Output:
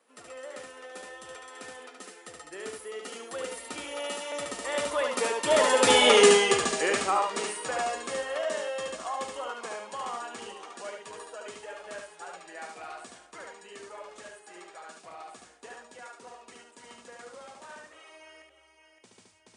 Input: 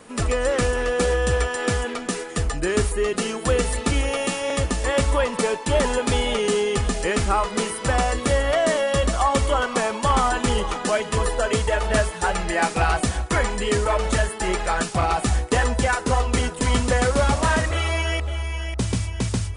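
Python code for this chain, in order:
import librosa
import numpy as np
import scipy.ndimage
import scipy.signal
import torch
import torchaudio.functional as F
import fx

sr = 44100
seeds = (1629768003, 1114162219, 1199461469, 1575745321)

y = fx.doppler_pass(x, sr, speed_mps=14, closest_m=4.0, pass_at_s=6.13)
y = scipy.signal.sosfilt(scipy.signal.butter(2, 390.0, 'highpass', fs=sr, output='sos'), y)
y = y + 10.0 ** (-3.5 / 20.0) * np.pad(y, (int(73 * sr / 1000.0), 0))[:len(y)]
y = y * 10.0 ** (6.0 / 20.0)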